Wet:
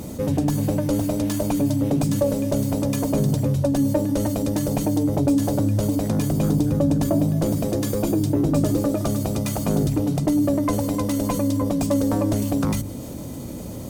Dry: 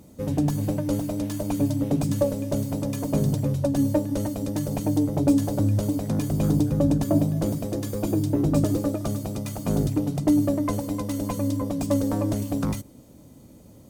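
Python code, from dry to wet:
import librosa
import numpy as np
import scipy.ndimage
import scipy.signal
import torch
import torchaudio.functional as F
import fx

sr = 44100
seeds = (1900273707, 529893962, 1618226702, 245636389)

y = fx.hum_notches(x, sr, base_hz=50, count=6)
y = fx.env_flatten(y, sr, amount_pct=50)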